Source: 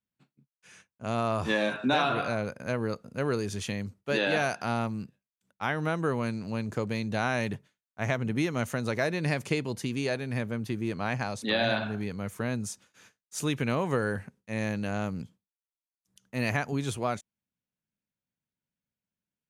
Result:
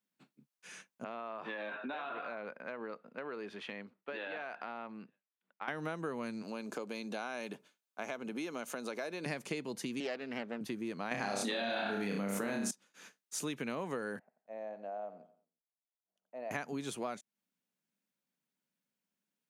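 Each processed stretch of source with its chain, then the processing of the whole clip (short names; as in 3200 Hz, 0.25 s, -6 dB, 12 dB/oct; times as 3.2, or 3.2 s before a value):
1.04–5.68 HPF 950 Hz 6 dB/oct + air absorption 460 m + compressor 3:1, threshold -37 dBFS
6.42–9.26 HPF 270 Hz + notch 1900 Hz, Q 5.8 + compressor 1.5:1, threshold -37 dBFS
10–10.61 BPF 220–4500 Hz + Doppler distortion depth 0.22 ms
11.11–12.71 HPF 130 Hz + flutter echo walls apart 5.2 m, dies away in 0.47 s + fast leveller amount 100%
14.19–16.51 band-pass 670 Hz, Q 6.8 + feedback echo 88 ms, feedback 39%, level -15 dB
whole clip: HPF 180 Hz 24 dB/oct; compressor 3:1, threshold -42 dBFS; gain +3 dB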